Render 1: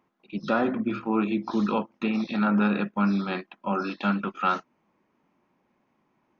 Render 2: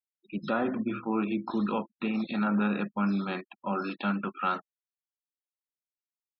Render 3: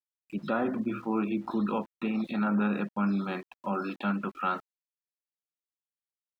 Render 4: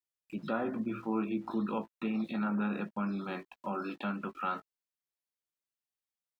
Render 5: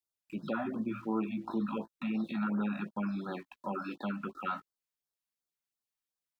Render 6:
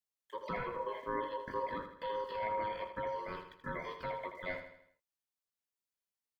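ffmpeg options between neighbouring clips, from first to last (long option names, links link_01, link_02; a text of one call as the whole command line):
ffmpeg -i in.wav -filter_complex "[0:a]afftfilt=real='re*gte(hypot(re,im),0.00794)':imag='im*gte(hypot(re,im),0.00794)':win_size=1024:overlap=0.75,asplit=2[link_01][link_02];[link_02]alimiter=level_in=0.5dB:limit=-24dB:level=0:latency=1:release=230,volume=-0.5dB,volume=-1.5dB[link_03];[link_01][link_03]amix=inputs=2:normalize=0,volume=-6.5dB" out.wav
ffmpeg -i in.wav -af "aeval=exprs='val(0)*gte(abs(val(0)),0.00282)':channel_layout=same,highshelf=frequency=3600:gain=-7.5" out.wav
ffmpeg -i in.wav -filter_complex "[0:a]asplit=2[link_01][link_02];[link_02]acompressor=threshold=-37dB:ratio=6,volume=-1.5dB[link_03];[link_01][link_03]amix=inputs=2:normalize=0,asplit=2[link_04][link_05];[link_05]adelay=18,volume=-10.5dB[link_06];[link_04][link_06]amix=inputs=2:normalize=0,volume=-7dB" out.wav
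ffmpeg -i in.wav -af "afftfilt=real='re*(1-between(b*sr/1024,370*pow(2600/370,0.5+0.5*sin(2*PI*2.8*pts/sr))/1.41,370*pow(2600/370,0.5+0.5*sin(2*PI*2.8*pts/sr))*1.41))':imag='im*(1-between(b*sr/1024,370*pow(2600/370,0.5+0.5*sin(2*PI*2.8*pts/sr))/1.41,370*pow(2600/370,0.5+0.5*sin(2*PI*2.8*pts/sr))*1.41))':win_size=1024:overlap=0.75" out.wav
ffmpeg -i in.wav -filter_complex "[0:a]aeval=exprs='val(0)*sin(2*PI*740*n/s)':channel_layout=same,asplit=2[link_01][link_02];[link_02]aecho=0:1:80|160|240|320|400:0.355|0.163|0.0751|0.0345|0.0159[link_03];[link_01][link_03]amix=inputs=2:normalize=0,volume=-1.5dB" out.wav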